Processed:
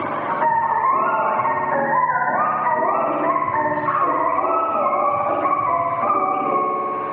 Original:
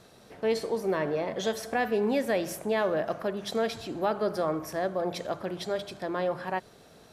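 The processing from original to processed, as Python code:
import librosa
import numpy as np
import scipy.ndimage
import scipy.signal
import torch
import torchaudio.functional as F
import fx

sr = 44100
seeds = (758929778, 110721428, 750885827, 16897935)

p1 = fx.octave_mirror(x, sr, pivot_hz=640.0)
p2 = fx.low_shelf(p1, sr, hz=260.0, db=-11.5)
p3 = fx.over_compress(p2, sr, threshold_db=-36.0, ratio=-1.0)
p4 = p2 + (p3 * librosa.db_to_amplitude(1.0))
p5 = fx.cabinet(p4, sr, low_hz=200.0, low_slope=12, high_hz=2100.0, hz=(210.0, 310.0, 460.0, 750.0, 1100.0, 2000.0), db=(-8, 3, -6, -5, 8, -4))
p6 = fx.room_flutter(p5, sr, wall_m=10.3, rt60_s=1.5)
p7 = fx.band_squash(p6, sr, depth_pct=100)
y = p7 * librosa.db_to_amplitude(5.5)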